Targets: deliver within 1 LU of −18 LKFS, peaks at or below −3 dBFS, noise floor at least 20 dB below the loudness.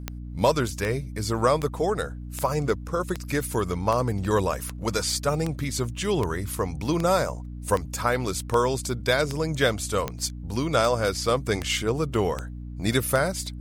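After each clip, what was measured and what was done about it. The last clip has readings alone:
number of clicks 18; mains hum 60 Hz; hum harmonics up to 300 Hz; level of the hum −34 dBFS; integrated loudness −26.0 LKFS; sample peak −7.5 dBFS; target loudness −18.0 LKFS
→ click removal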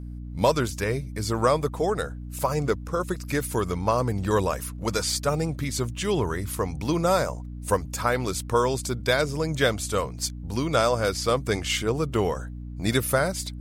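number of clicks 0; mains hum 60 Hz; hum harmonics up to 300 Hz; level of the hum −34 dBFS
→ mains-hum notches 60/120/180/240/300 Hz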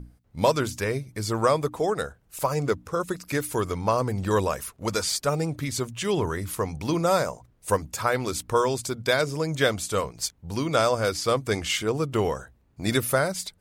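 mains hum none found; integrated loudness −26.0 LKFS; sample peak −8.0 dBFS; target loudness −18.0 LKFS
→ level +8 dB
brickwall limiter −3 dBFS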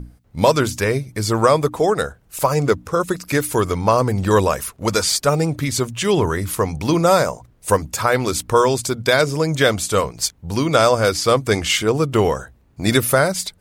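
integrated loudness −18.5 LKFS; sample peak −3.0 dBFS; background noise floor −54 dBFS

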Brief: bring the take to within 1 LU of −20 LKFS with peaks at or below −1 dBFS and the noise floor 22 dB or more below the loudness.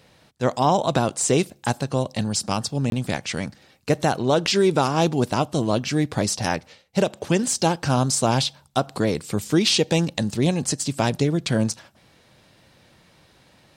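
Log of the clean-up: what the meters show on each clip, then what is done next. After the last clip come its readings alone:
number of dropouts 1; longest dropout 22 ms; integrated loudness −22.5 LKFS; sample peak −7.5 dBFS; target loudness −20.0 LKFS
→ repair the gap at 0:02.90, 22 ms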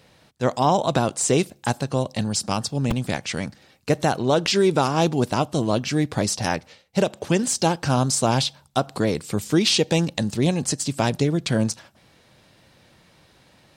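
number of dropouts 0; integrated loudness −22.5 LKFS; sample peak −7.5 dBFS; target loudness −20.0 LKFS
→ level +2.5 dB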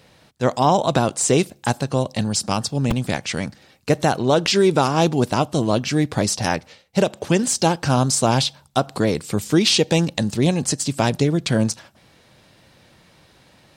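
integrated loudness −20.0 LKFS; sample peak −5.0 dBFS; background noise floor −54 dBFS

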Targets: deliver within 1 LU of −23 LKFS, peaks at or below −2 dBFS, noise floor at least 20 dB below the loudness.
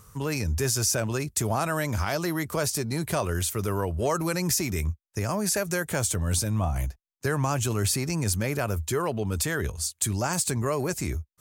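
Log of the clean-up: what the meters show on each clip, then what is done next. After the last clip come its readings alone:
integrated loudness −27.0 LKFS; sample peak −11.5 dBFS; target loudness −23.0 LKFS
→ level +4 dB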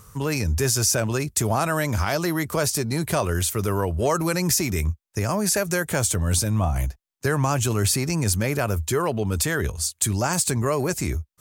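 integrated loudness −23.0 LKFS; sample peak −7.5 dBFS; background noise floor −69 dBFS

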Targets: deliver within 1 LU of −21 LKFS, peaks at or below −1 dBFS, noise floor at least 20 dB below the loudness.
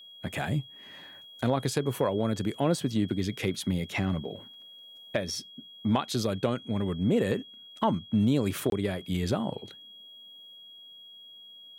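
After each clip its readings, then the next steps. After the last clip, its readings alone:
number of dropouts 1; longest dropout 22 ms; interfering tone 3,300 Hz; level of the tone −47 dBFS; integrated loudness −29.5 LKFS; sample peak −12.5 dBFS; target loudness −21.0 LKFS
→ repair the gap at 0:08.70, 22 ms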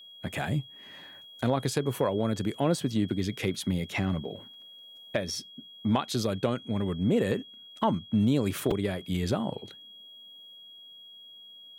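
number of dropouts 0; interfering tone 3,300 Hz; level of the tone −47 dBFS
→ notch filter 3,300 Hz, Q 30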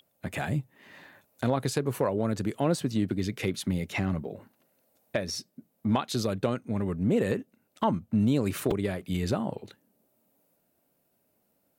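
interfering tone none found; integrated loudness −29.5 LKFS; sample peak −13.0 dBFS; target loudness −21.0 LKFS
→ level +8.5 dB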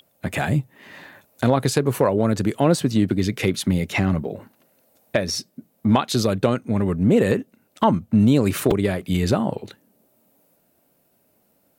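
integrated loudness −21.0 LKFS; sample peak −4.5 dBFS; background noise floor −65 dBFS

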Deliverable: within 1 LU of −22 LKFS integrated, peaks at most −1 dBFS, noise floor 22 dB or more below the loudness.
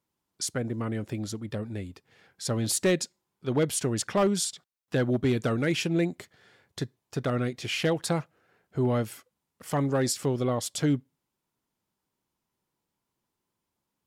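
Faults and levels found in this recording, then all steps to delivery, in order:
share of clipped samples 0.3%; peaks flattened at −17.5 dBFS; integrated loudness −29.0 LKFS; sample peak −17.5 dBFS; target loudness −22.0 LKFS
→ clipped peaks rebuilt −17.5 dBFS
level +7 dB

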